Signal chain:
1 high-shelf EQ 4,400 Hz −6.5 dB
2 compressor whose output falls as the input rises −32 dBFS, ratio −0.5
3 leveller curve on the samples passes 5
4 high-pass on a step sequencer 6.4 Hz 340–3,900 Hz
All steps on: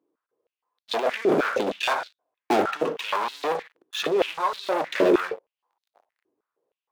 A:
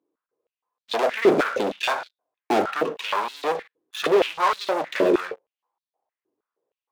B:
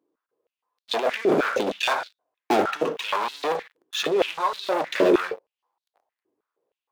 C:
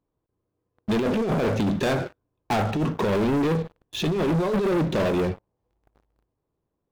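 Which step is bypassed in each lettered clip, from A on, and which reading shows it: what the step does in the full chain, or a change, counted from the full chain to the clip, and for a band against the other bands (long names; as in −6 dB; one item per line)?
2, change in crest factor +1.5 dB
1, 8 kHz band +2.0 dB
4, 125 Hz band +21.0 dB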